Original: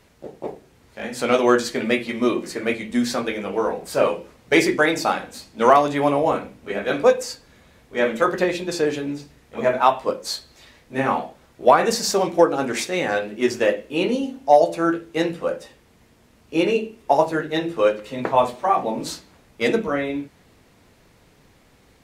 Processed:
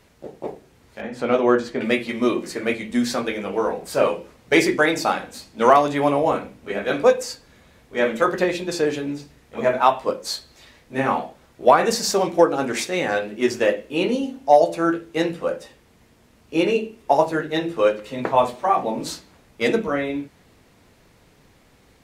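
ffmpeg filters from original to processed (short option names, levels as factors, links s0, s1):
-filter_complex "[0:a]asettb=1/sr,asplit=3[s0][s1][s2];[s0]atrim=end=1.014[s3];[s1]atrim=start=1.01:end=1.81,asetpts=PTS-STARTPTS,afade=t=in:d=0.004:c=qsin,afade=t=out:st=0.796:d=0.004:c=qsin,lowpass=f=1400:p=1[s4];[s2]atrim=start=1.806[s5];[s3][s4]acrossfade=d=0.004:c1=hsin:c2=qsin[s6];[s6][s5]acrossfade=d=0.004:c1=qsin:c2=hsin"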